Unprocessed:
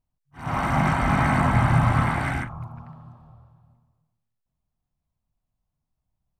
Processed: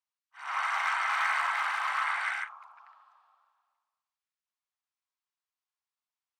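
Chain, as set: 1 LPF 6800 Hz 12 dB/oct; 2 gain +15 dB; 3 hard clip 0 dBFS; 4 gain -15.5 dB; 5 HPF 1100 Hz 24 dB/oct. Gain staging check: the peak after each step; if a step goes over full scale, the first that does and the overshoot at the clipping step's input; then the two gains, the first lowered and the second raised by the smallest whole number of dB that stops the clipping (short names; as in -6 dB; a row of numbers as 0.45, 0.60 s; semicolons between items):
-7.5, +7.5, 0.0, -15.5, -16.0 dBFS; step 2, 7.5 dB; step 2 +7 dB, step 4 -7.5 dB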